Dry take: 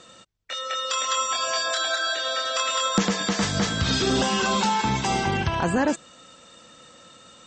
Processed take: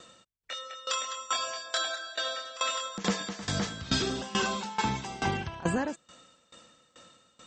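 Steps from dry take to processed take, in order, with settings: sawtooth tremolo in dB decaying 2.3 Hz, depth 19 dB; trim -1.5 dB

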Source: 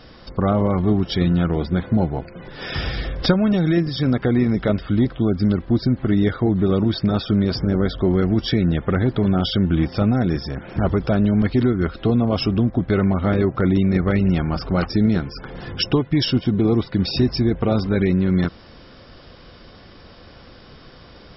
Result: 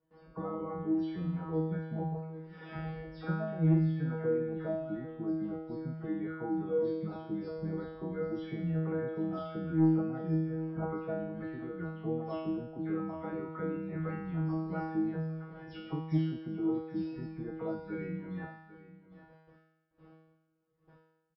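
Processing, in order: delay that grows with frequency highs early, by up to 183 ms; gate with hold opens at -33 dBFS; low-pass 1.2 kHz 12 dB/octave; reverb removal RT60 1.1 s; high-pass 43 Hz; in parallel at +3 dB: peak limiter -15 dBFS, peak gain reduction 11 dB; on the sum: feedback comb 160 Hz, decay 0.94 s, harmonics all, mix 100%; saturation -17.5 dBFS, distortion -20 dB; on a send: delay 795 ms -16.5 dB

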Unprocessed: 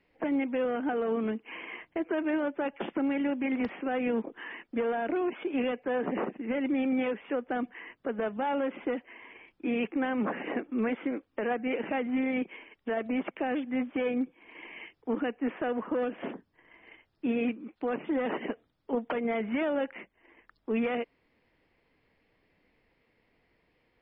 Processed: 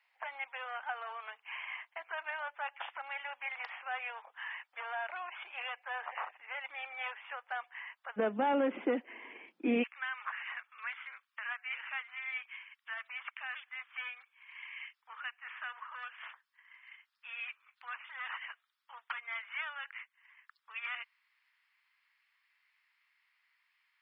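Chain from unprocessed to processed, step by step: steep high-pass 810 Hz 36 dB/octave, from 8.16 s 190 Hz, from 9.82 s 1.1 kHz

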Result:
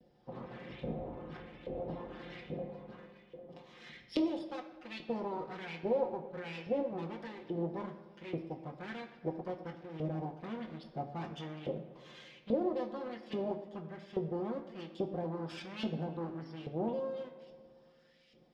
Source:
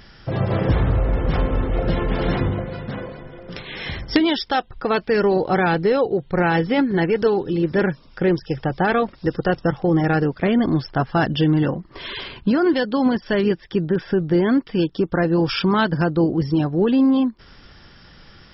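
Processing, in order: comb filter that takes the minimum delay 5.7 ms; FFT filter 200 Hz 0 dB, 450 Hz -8 dB, 1.4 kHz -25 dB, 3.6 kHz -11 dB; in parallel at -4.5 dB: saturation -24.5 dBFS, distortion -9 dB; on the sum: LFO band-pass saw up 1.2 Hz 520–2800 Hz; feedback echo behind a low-pass 111 ms, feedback 72%, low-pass 1.5 kHz, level -16 dB; on a send at -3.5 dB: reverberation RT60 1.0 s, pre-delay 3 ms; on the sum: trim -1 dB

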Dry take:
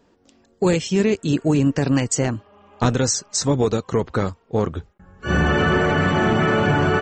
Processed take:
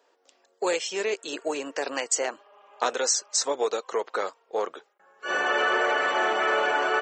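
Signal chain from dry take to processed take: high-pass 470 Hz 24 dB/octave; trim -2 dB

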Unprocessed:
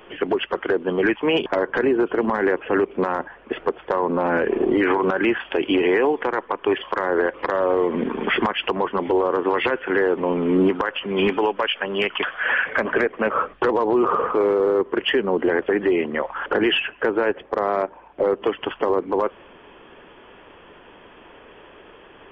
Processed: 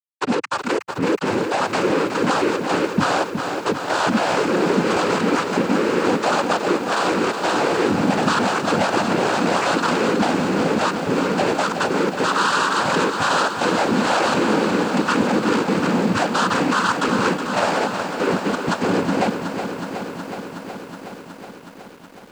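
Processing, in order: pitch bend over the whole clip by -8 st starting unshifted; low-pass 1.1 kHz 24 dB/octave; spectral noise reduction 28 dB; bass shelf 400 Hz -11 dB; peak limiter -25 dBFS, peak gain reduction 11 dB; compression, threshold -34 dBFS, peak gain reduction 6.5 dB; static phaser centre 530 Hz, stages 6; fuzz box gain 57 dB, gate -58 dBFS; noise-vocoded speech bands 8; bit-crushed delay 369 ms, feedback 80%, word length 7-bit, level -8 dB; trim -5 dB

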